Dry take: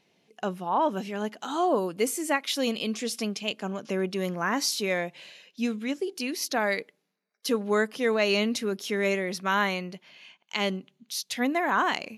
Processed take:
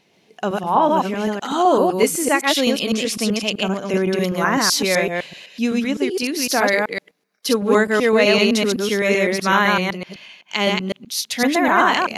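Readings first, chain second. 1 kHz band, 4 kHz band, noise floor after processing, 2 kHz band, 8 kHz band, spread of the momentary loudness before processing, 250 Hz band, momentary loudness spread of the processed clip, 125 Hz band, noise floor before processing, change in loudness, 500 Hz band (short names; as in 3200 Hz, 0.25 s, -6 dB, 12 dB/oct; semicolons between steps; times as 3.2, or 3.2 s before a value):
+10.0 dB, +10.0 dB, -60 dBFS, +9.5 dB, +10.0 dB, 10 LU, +9.5 dB, 9 LU, +10.0 dB, -74 dBFS, +9.5 dB, +9.5 dB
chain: reverse delay 0.127 s, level -1.5 dB; gain +7.5 dB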